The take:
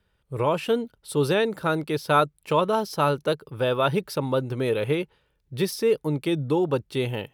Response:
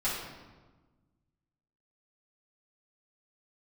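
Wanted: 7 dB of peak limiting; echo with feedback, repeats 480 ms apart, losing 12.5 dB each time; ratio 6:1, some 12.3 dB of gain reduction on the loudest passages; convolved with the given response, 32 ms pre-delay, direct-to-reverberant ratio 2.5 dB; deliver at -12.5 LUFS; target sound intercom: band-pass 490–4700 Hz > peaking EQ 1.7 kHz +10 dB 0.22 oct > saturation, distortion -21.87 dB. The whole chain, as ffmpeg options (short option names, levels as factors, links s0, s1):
-filter_complex "[0:a]acompressor=threshold=0.0316:ratio=6,alimiter=level_in=1.26:limit=0.0631:level=0:latency=1,volume=0.794,aecho=1:1:480|960|1440:0.237|0.0569|0.0137,asplit=2[s0][s1];[1:a]atrim=start_sample=2205,adelay=32[s2];[s1][s2]afir=irnorm=-1:irlink=0,volume=0.299[s3];[s0][s3]amix=inputs=2:normalize=0,highpass=490,lowpass=4700,equalizer=f=1700:t=o:w=0.22:g=10,asoftclip=threshold=0.0501,volume=20"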